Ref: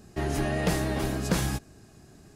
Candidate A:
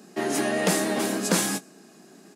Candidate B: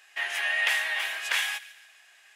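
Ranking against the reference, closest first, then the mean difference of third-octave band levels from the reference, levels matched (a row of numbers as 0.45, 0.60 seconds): A, B; 4.0, 14.0 decibels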